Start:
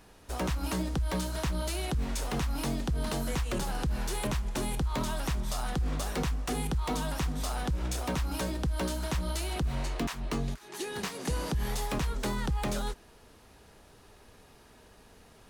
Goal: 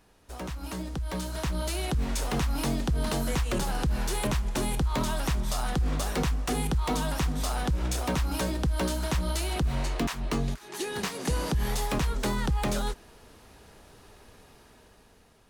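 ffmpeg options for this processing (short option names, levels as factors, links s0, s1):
-af "dynaudnorm=f=540:g=5:m=2.82,volume=0.531"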